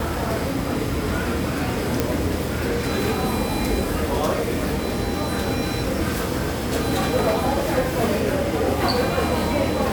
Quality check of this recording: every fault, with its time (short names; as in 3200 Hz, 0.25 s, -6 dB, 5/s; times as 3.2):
2 pop